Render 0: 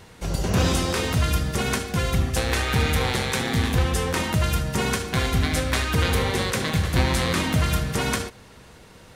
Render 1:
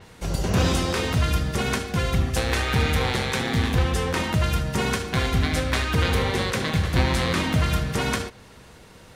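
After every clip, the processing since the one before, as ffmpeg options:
ffmpeg -i in.wav -af "adynamicequalizer=threshold=0.00708:dfrequency=6100:dqfactor=0.7:tfrequency=6100:tqfactor=0.7:attack=5:release=100:ratio=0.375:range=3:mode=cutabove:tftype=highshelf" out.wav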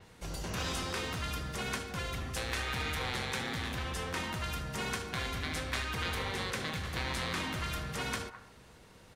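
ffmpeg -i in.wav -filter_complex "[0:a]acrossover=split=860|1600[link_01][link_02][link_03];[link_01]asoftclip=type=tanh:threshold=-27.5dB[link_04];[link_02]aecho=1:1:209:0.531[link_05];[link_04][link_05][link_03]amix=inputs=3:normalize=0,volume=-9dB" out.wav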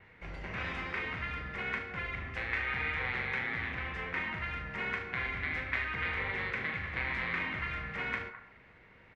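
ffmpeg -i in.wav -filter_complex "[0:a]lowpass=frequency=2100:width_type=q:width=4.4,asplit=2[link_01][link_02];[link_02]adelay=41,volume=-8.5dB[link_03];[link_01][link_03]amix=inputs=2:normalize=0,volume=-5dB" out.wav

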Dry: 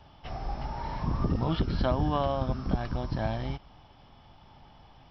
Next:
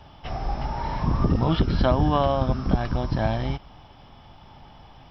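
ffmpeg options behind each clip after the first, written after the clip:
ffmpeg -i in.wav -af "bandreject=frequency=4400:width=17,volume=6.5dB" out.wav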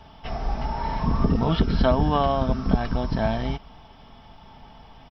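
ffmpeg -i in.wav -af "aecho=1:1:4.5:0.39" out.wav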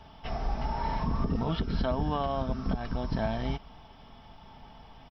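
ffmpeg -i in.wav -af "alimiter=limit=-16dB:level=0:latency=1:release=297,volume=-3.5dB" out.wav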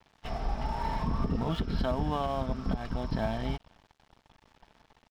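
ffmpeg -i in.wav -af "aeval=exprs='sgn(val(0))*max(abs(val(0))-0.00422,0)':channel_layout=same" out.wav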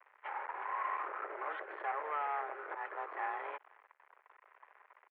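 ffmpeg -i in.wav -af "volume=32dB,asoftclip=hard,volume=-32dB,tiltshelf=frequency=680:gain=-6.5,highpass=frequency=290:width_type=q:width=0.5412,highpass=frequency=290:width_type=q:width=1.307,lowpass=frequency=2000:width_type=q:width=0.5176,lowpass=frequency=2000:width_type=q:width=0.7071,lowpass=frequency=2000:width_type=q:width=1.932,afreqshift=150" out.wav

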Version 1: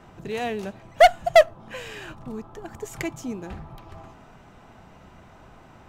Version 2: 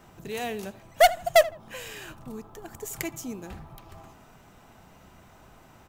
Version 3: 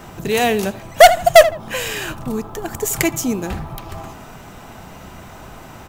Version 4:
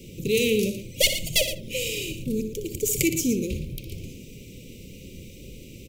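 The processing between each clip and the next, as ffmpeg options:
ffmpeg -i in.wav -filter_complex "[0:a]aemphasis=mode=production:type=50fm,asplit=2[link_01][link_02];[link_02]adelay=80,lowpass=frequency=2600:poles=1,volume=-18dB,asplit=2[link_03][link_04];[link_04]adelay=80,lowpass=frequency=2600:poles=1,volume=0.28[link_05];[link_01][link_03][link_05]amix=inputs=3:normalize=0,volume=-4dB" out.wav
ffmpeg -i in.wav -af "apsyclip=17dB,volume=-1.5dB" out.wav
ffmpeg -i in.wav -filter_complex "[0:a]asuperstop=centerf=1100:order=20:qfactor=0.66,asplit=2[link_01][link_02];[link_02]aecho=0:1:61.22|116.6:0.282|0.282[link_03];[link_01][link_03]amix=inputs=2:normalize=0,volume=-3.5dB" out.wav

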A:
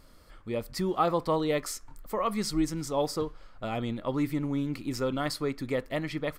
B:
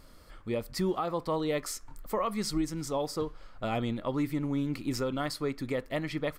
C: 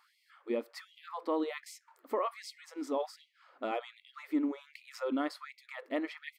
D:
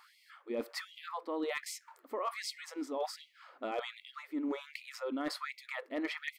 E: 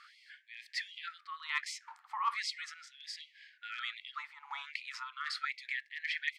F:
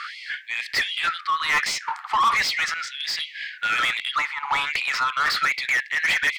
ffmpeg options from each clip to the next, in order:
ffmpeg -i in.wav -af "alimiter=limit=-22.5dB:level=0:latency=1:release=484,volume=1.5dB" out.wav
ffmpeg -i in.wav -af "bass=frequency=250:gain=15,treble=frequency=4000:gain=-12,afftfilt=real='re*gte(b*sr/1024,220*pow(2000/220,0.5+0.5*sin(2*PI*1.3*pts/sr)))':imag='im*gte(b*sr/1024,220*pow(2000/220,0.5+0.5*sin(2*PI*1.3*pts/sr)))':win_size=1024:overlap=0.75,volume=-2.5dB" out.wav
ffmpeg -i in.wav -af "areverse,acompressor=threshold=-40dB:ratio=12,areverse,asoftclip=type=hard:threshold=-34dB,volume=7dB" out.wav
ffmpeg -i in.wav -af "lowpass=5400,afftfilt=real='re*gte(b*sr/1024,730*pow(1600/730,0.5+0.5*sin(2*PI*0.38*pts/sr)))':imag='im*gte(b*sr/1024,730*pow(1600/730,0.5+0.5*sin(2*PI*0.38*pts/sr)))':win_size=1024:overlap=0.75,volume=5dB" out.wav
ffmpeg -i in.wav -filter_complex "[0:a]asplit=2[link_01][link_02];[link_02]highpass=frequency=720:poles=1,volume=24dB,asoftclip=type=tanh:threshold=-20.5dB[link_03];[link_01][link_03]amix=inputs=2:normalize=0,lowpass=frequency=3000:poles=1,volume=-6dB,volume=8.5dB" out.wav

